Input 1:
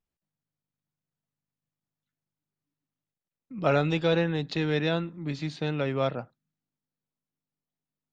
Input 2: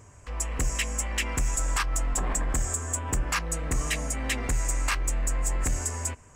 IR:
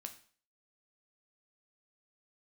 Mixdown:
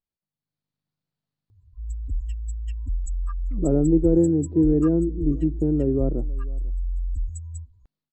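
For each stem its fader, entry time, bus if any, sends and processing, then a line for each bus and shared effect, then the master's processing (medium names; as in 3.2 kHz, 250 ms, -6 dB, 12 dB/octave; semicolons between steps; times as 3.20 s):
-7.0 dB, 0.00 s, no send, echo send -22.5 dB, level rider gain up to 10 dB; touch-sensitive low-pass 340–4400 Hz down, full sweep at -24.5 dBFS
+2.5 dB, 1.50 s, no send, no echo send, spectral contrast enhancement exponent 3.4; peaking EQ 990 Hz -9.5 dB 2.6 oct; static phaser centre 560 Hz, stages 6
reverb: none
echo: delay 495 ms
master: treble shelf 2.7 kHz -11 dB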